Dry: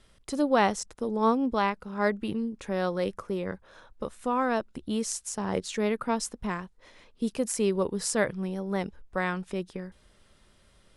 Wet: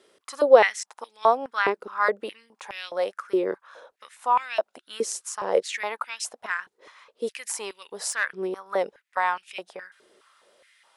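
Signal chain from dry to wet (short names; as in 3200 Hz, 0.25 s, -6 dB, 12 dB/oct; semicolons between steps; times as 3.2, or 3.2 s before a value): 8.11–8.66 tube stage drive 18 dB, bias 0.55; stepped high-pass 4.8 Hz 390–2600 Hz; gain +1 dB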